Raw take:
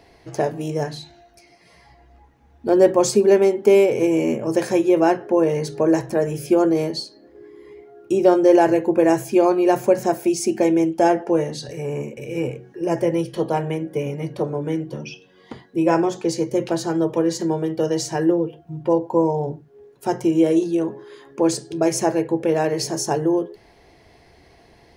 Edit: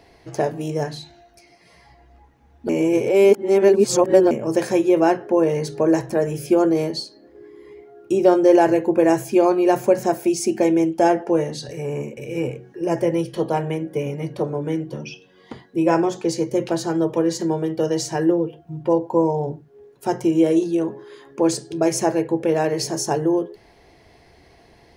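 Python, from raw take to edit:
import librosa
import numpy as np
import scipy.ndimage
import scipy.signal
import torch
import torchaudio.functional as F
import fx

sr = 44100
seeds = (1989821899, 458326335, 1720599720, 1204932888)

y = fx.edit(x, sr, fx.reverse_span(start_s=2.69, length_s=1.62), tone=tone)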